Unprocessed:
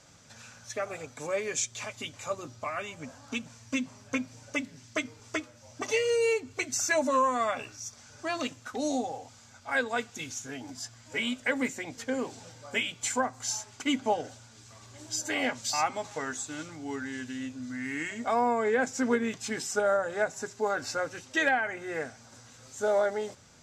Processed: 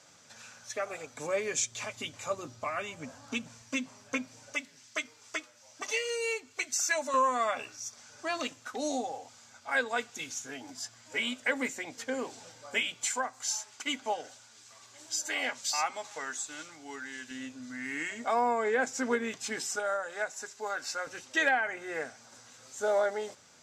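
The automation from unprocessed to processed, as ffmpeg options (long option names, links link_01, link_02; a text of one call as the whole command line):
ffmpeg -i in.wav -af "asetnsamples=nb_out_samples=441:pad=0,asendcmd='1.14 highpass f 110;3.62 highpass f 340;4.54 highpass f 1200;7.14 highpass f 390;13.05 highpass f 1000;17.31 highpass f 400;19.76 highpass f 1300;21.07 highpass f 410',highpass=frequency=370:poles=1" out.wav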